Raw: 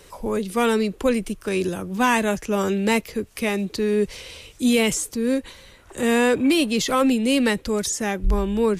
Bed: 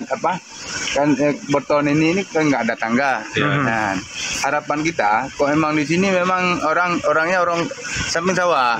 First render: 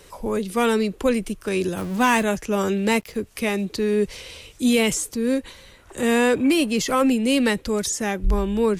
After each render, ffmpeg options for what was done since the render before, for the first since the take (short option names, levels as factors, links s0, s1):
-filter_complex "[0:a]asettb=1/sr,asplit=3[s0][s1][s2];[s0]atrim=end=1.774[s3];[s1]atrim=start=1.77:end=2.23,asetpts=PTS-STARTPTS,afade=t=in:d=0.004:c=qsin,afade=t=out:st=0.456:d=0.004:c=qsin,aeval=exprs='val(0)+0.5*0.0282*sgn(val(0))':c=same[s4];[s2]atrim=start=2.226[s5];[s3][s4]acrossfade=d=0.004:c1=hsin:c2=qsin[s6];[s6][s5]acrossfade=d=0.004:c1=qsin:c2=hsin,asettb=1/sr,asplit=3[s7][s8][s9];[s7]atrim=end=2.784[s10];[s8]atrim=start=2.78:end=3.21,asetpts=PTS-STARTPTS,afade=t=in:d=0.004:c=qsin,afade=t=out:st=0.426:d=0.004:c=qsin,aeval=exprs='sgn(val(0))*max(abs(val(0))-0.00335,0)':c=same[s11];[s9]atrim=start=3.206[s12];[s10][s11]acrossfade=d=0.004:c1=hsin:c2=qsin[s13];[s13][s12]acrossfade=d=0.004:c1=qsin:c2=hsin,asettb=1/sr,asplit=3[s14][s15][s16];[s14]atrim=end=6.444[s17];[s15]atrim=start=6.44:end=7.27,asetpts=PTS-STARTPTS,afade=t=in:d=0.004:c=qsin,afade=t=out:st=0.826:d=0.004:c=qsin,equalizer=f=3700:w=4.9:g=-7.5[s18];[s16]atrim=start=7.266[s19];[s17][s18]acrossfade=d=0.004:c1=hsin:c2=qsin[s20];[s20][s19]acrossfade=d=0.004:c1=qsin:c2=hsin"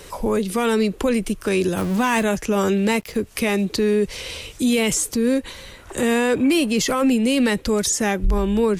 -filter_complex "[0:a]asplit=2[s0][s1];[s1]acompressor=threshold=0.0355:ratio=6,volume=1.41[s2];[s0][s2]amix=inputs=2:normalize=0,alimiter=limit=0.266:level=0:latency=1:release=20"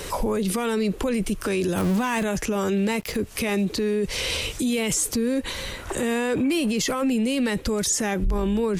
-filter_complex "[0:a]asplit=2[s0][s1];[s1]acompressor=threshold=0.0398:ratio=6,volume=1.26[s2];[s0][s2]amix=inputs=2:normalize=0,alimiter=limit=0.141:level=0:latency=1:release=19"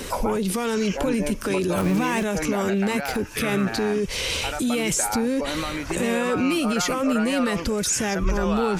-filter_complex "[1:a]volume=0.237[s0];[0:a][s0]amix=inputs=2:normalize=0"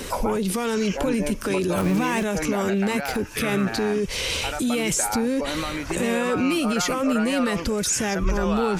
-af anull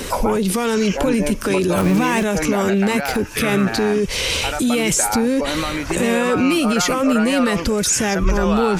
-af "volume=1.88"